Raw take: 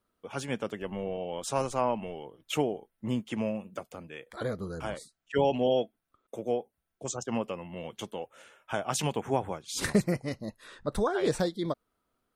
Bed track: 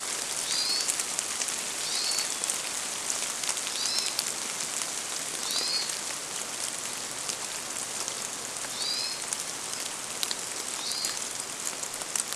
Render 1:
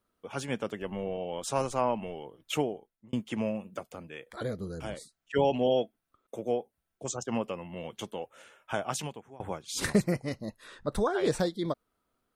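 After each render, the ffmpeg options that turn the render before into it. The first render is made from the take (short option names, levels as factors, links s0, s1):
-filter_complex "[0:a]asettb=1/sr,asplit=3[s0][s1][s2];[s0]atrim=end=4.414[s3];[s1]atrim=start=4.41:end=4.98,asetpts=PTS-STARTPTS,afade=t=in:d=0.004:c=qsin,afade=t=out:st=0.566:d=0.004:c=qsin,equalizer=f=1100:t=o:w=1.2:g=-8[s4];[s2]atrim=start=4.976[s5];[s3][s4]acrossfade=d=0.004:c1=hsin:c2=qsin[s6];[s6][s5]acrossfade=d=0.004:c1=qsin:c2=hsin,asplit=3[s7][s8][s9];[s7]atrim=end=3.13,asetpts=PTS-STARTPTS,afade=t=out:st=2.54:d=0.59[s10];[s8]atrim=start=3.13:end=9.4,asetpts=PTS-STARTPTS,afade=t=in:d=0.004:c=hsin,afade=t=out:st=5.72:d=0.55:c=qua:silence=0.0668344[s11];[s9]atrim=start=9.4,asetpts=PTS-STARTPTS,afade=t=in:d=0.004:c=hsin:silence=0.0668344[s12];[s10][s11][s12]concat=n=3:v=0:a=1"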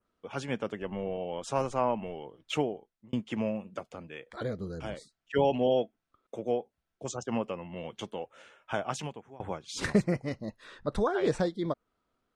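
-af "lowpass=5900,adynamicequalizer=threshold=0.00158:dfrequency=4100:dqfactor=1.6:tfrequency=4100:tqfactor=1.6:attack=5:release=100:ratio=0.375:range=3.5:mode=cutabove:tftype=bell"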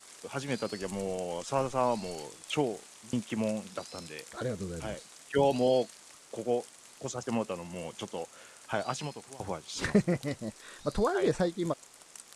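-filter_complex "[1:a]volume=0.106[s0];[0:a][s0]amix=inputs=2:normalize=0"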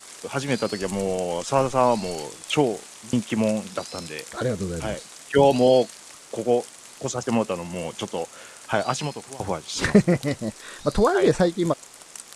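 -af "volume=2.82"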